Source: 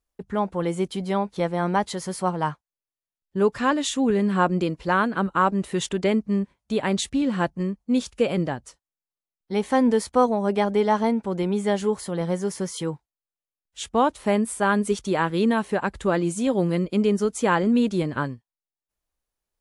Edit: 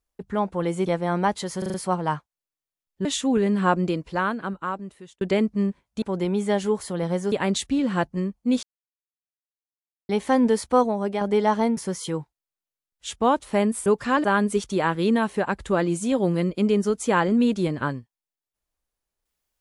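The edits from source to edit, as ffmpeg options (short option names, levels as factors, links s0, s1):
-filter_complex "[0:a]asplit=16[s0][s1][s2][s3][s4][s5][s6][s7][s8][s9][s10][s11][s12][s13][s14][s15];[s0]atrim=end=0.862[s16];[s1]atrim=start=1.368:end=2.132[s17];[s2]atrim=start=2.088:end=2.132[s18];[s3]atrim=start=2.088:end=2.132[s19];[s4]atrim=start=2.088:end=2.132[s20];[s5]atrim=start=2.088:end=3.402[s21];[s6]atrim=start=3.778:end=5.94,asetpts=PTS-STARTPTS,afade=t=out:st=0.712:d=1.45[s22];[s7]atrim=start=5.94:end=6.752,asetpts=PTS-STARTPTS,afade=t=in:d=0.004:c=hsin[s23];[s8]atrim=start=11.198:end=12.502[s24];[s9]atrim=start=6.748:end=8.06,asetpts=PTS-STARTPTS,afade=t=out:st=1.308:d=0.004:c=hsin[s25];[s10]atrim=start=8.06:end=9.52,asetpts=PTS-STARTPTS,volume=0[s26];[s11]atrim=start=9.52:end=10.64,asetpts=PTS-STARTPTS,afade=t=in:d=0.004:c=hsin,afade=t=out:st=0.72:d=0.4:silence=0.501187[s27];[s12]atrim=start=10.64:end=11.202,asetpts=PTS-STARTPTS,afade=t=in:d=0.004:c=hsin:silence=0.501187[s28];[s13]atrim=start=12.498:end=14.592[s29];[s14]atrim=start=3.398:end=3.782[s30];[s15]atrim=start=14.588[s31];[s16][s17]acrossfade=d=0.004:c1=hsin:c2=hsin[s32];[s32][s18]acrossfade=d=0.004:c1=hsin:c2=hsin[s33];[s33][s19]acrossfade=d=0.004:c1=hsin:c2=hsin[s34];[s34][s20]acrossfade=d=0.004:c1=hsin:c2=hsin[s35];[s35][s21]acrossfade=d=0.004:c1=hsin:c2=hsin[s36];[s22][s23]concat=n=2:v=0:a=1[s37];[s36][s37]acrossfade=d=0.004:c1=hsin:c2=hsin[s38];[s38][s24]acrossfade=d=0.004:c1=hsin:c2=hsin[s39];[s25][s26][s27][s28]concat=n=4:v=0:a=1[s40];[s39][s40]acrossfade=d=0.004:c1=hsin:c2=hsin[s41];[s41][s29]acrossfade=d=0.004:c1=hsin:c2=hsin[s42];[s42][s30]acrossfade=d=0.004:c1=hsin:c2=hsin[s43];[s43][s31]acrossfade=d=0.004:c1=hsin:c2=hsin"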